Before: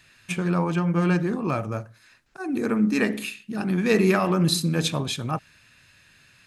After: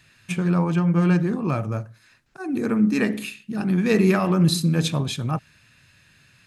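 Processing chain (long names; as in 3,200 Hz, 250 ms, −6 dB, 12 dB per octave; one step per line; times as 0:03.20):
parametric band 130 Hz +6 dB 1.7 octaves
level −1 dB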